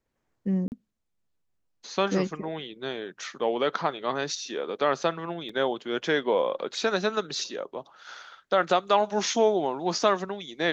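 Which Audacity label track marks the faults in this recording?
0.680000	0.720000	dropout 39 ms
5.490000	5.490000	dropout 4 ms

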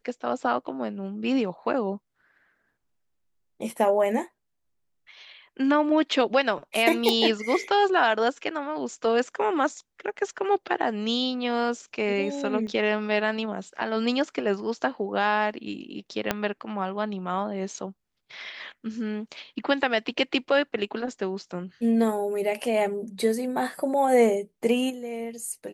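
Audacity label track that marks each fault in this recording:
7.090000	7.090000	pop
12.670000	12.670000	dropout 2 ms
16.310000	16.310000	pop -8 dBFS

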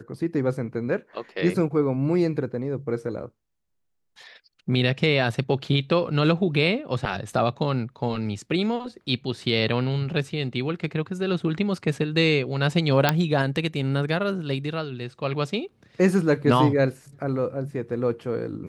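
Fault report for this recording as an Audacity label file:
13.090000	13.090000	pop -4 dBFS

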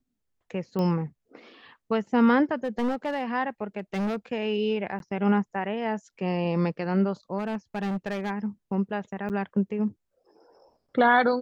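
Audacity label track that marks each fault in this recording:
0.790000	0.790000	pop -19 dBFS
2.640000	3.230000	clipped -23 dBFS
3.780000	4.160000	clipped -25 dBFS
4.990000	5.000000	dropout 12 ms
7.380000	8.310000	clipped -26 dBFS
9.290000	9.300000	dropout 8.8 ms

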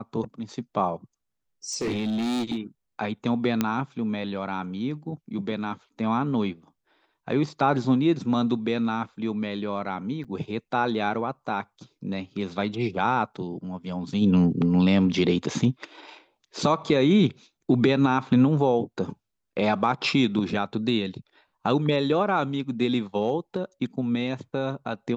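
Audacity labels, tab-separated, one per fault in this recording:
1.720000	2.580000	clipped -23.5 dBFS
3.610000	3.610000	pop -9 dBFS
10.240000	10.250000	dropout 6.7 ms

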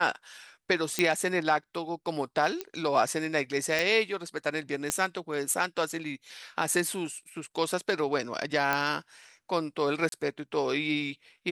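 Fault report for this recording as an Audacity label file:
0.990000	0.990000	pop -9 dBFS
2.610000	2.610000	pop -17 dBFS
3.790000	3.790000	pop
4.900000	4.900000	pop -12 dBFS
8.730000	8.730000	pop -12 dBFS
10.090000	10.120000	dropout 32 ms

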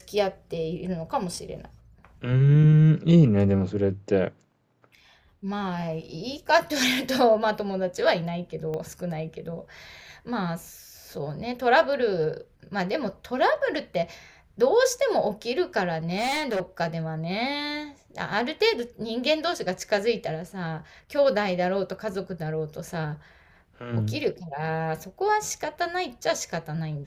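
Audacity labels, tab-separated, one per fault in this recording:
8.740000	8.740000	pop -21 dBFS
16.120000	16.610000	clipped -23 dBFS

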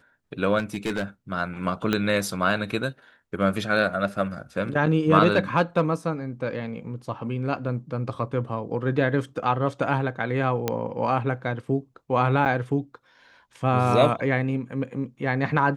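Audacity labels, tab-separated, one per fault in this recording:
0.580000	1.030000	clipped -22 dBFS
1.930000	1.930000	pop -10 dBFS
10.680000	10.680000	pop -9 dBFS
12.450000	12.460000	dropout 8.7 ms

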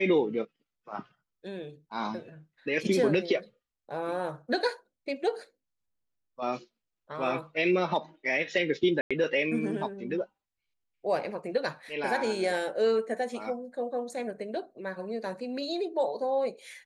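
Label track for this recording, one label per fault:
9.010000	9.110000	dropout 96 ms

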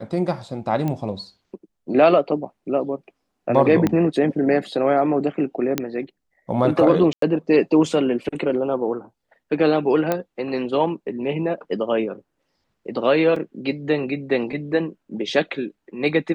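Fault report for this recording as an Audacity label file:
0.880000	0.880000	pop -14 dBFS
3.870000	3.870000	pop -8 dBFS
5.780000	5.780000	pop -6 dBFS
7.130000	7.220000	dropout 93 ms
10.120000	10.120000	pop -8 dBFS
13.360000	13.360000	dropout 3.5 ms

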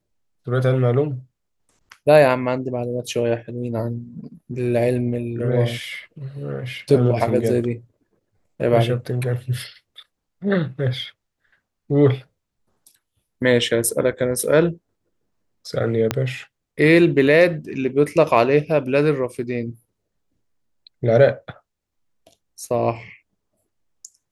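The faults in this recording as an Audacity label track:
16.110000	16.110000	pop -5 dBFS

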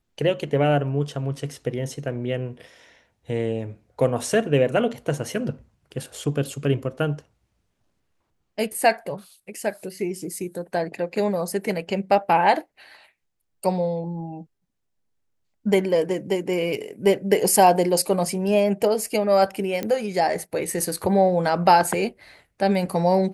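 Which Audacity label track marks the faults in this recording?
19.830000	19.830000	pop -13 dBFS

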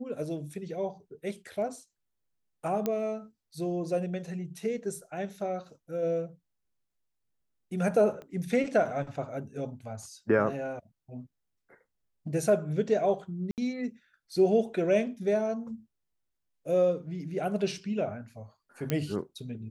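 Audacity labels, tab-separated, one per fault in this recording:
2.860000	2.860000	pop -16 dBFS
8.220000	8.220000	pop -31 dBFS
13.510000	13.580000	dropout 68 ms
18.900000	18.900000	pop -14 dBFS

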